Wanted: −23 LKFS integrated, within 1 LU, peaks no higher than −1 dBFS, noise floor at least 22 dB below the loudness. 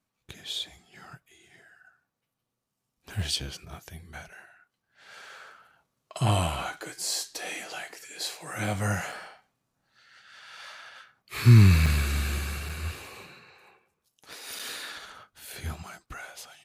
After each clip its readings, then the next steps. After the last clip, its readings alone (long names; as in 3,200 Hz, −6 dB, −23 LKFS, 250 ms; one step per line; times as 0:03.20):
number of dropouts 4; longest dropout 4.7 ms; integrated loudness −27.5 LKFS; sample peak −6.0 dBFS; target loudness −23.0 LKFS
→ repair the gap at 0:09.12/0:11.86/0:12.69/0:14.59, 4.7 ms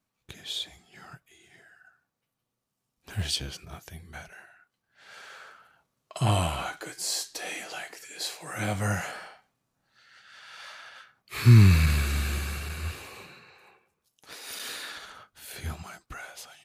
number of dropouts 0; integrated loudness −27.5 LKFS; sample peak −6.0 dBFS; target loudness −23.0 LKFS
→ level +4.5 dB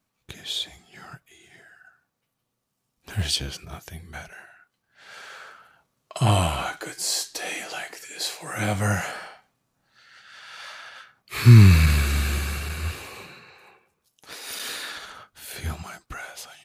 integrated loudness −23.0 LKFS; sample peak −1.5 dBFS; background noise floor −78 dBFS